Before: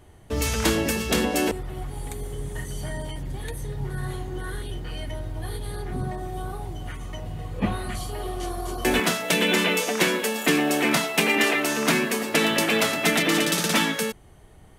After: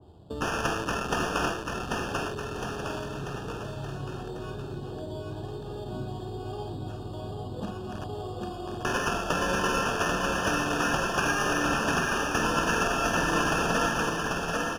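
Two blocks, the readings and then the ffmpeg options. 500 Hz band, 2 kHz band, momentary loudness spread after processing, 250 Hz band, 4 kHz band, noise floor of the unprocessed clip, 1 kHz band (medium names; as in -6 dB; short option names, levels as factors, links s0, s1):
-4.0 dB, -4.0 dB, 12 LU, -6.0 dB, -8.0 dB, -50 dBFS, +1.5 dB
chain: -filter_complex "[0:a]asplit=2[s0][s1];[s1]adelay=48,volume=0.501[s2];[s0][s2]amix=inputs=2:normalize=0,acrossover=split=1300[s3][s4];[s4]acrusher=bits=4:mix=0:aa=0.000001[s5];[s3][s5]amix=inputs=2:normalize=0,acrossover=split=130|1400[s6][s7][s8];[s6]acompressor=threshold=0.00891:ratio=4[s9];[s7]acompressor=threshold=0.0141:ratio=4[s10];[s8]acompressor=threshold=0.0631:ratio=4[s11];[s9][s10][s11]amix=inputs=3:normalize=0,highpass=72,acrusher=samples=11:mix=1:aa=0.000001,asuperstop=centerf=2100:order=12:qfactor=3,aemphasis=mode=reproduction:type=50fm,asplit=2[s12][s13];[s13]aecho=0:1:790|1501|2141|2717|3235:0.631|0.398|0.251|0.158|0.1[s14];[s12][s14]amix=inputs=2:normalize=0,adynamicequalizer=threshold=0.01:dfrequency=1900:dqfactor=0.7:tfrequency=1900:tqfactor=0.7:attack=5:release=100:ratio=0.375:range=1.5:mode=boostabove:tftype=highshelf"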